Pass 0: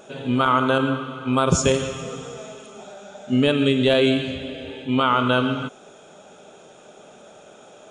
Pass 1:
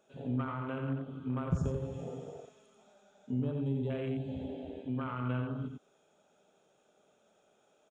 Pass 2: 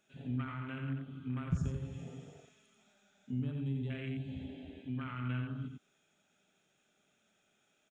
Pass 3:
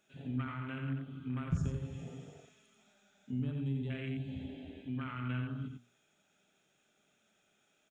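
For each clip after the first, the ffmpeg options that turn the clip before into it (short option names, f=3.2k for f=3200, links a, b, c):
-filter_complex "[0:a]afwtdn=0.0631,acrossover=split=170[a][b];[b]acompressor=threshold=-30dB:ratio=10[c];[a][c]amix=inputs=2:normalize=0,aecho=1:1:88:0.562,volume=-7.5dB"
-af "equalizer=f=500:t=o:w=1:g=-12,equalizer=f=1k:t=o:w=1:g=-8,equalizer=f=2k:t=o:w=1:g=7,volume=-1dB"
-af "bandreject=f=60:t=h:w=6,bandreject=f=120:t=h:w=6,bandreject=f=180:t=h:w=6,bandreject=f=240:t=h:w=6,volume=1dB"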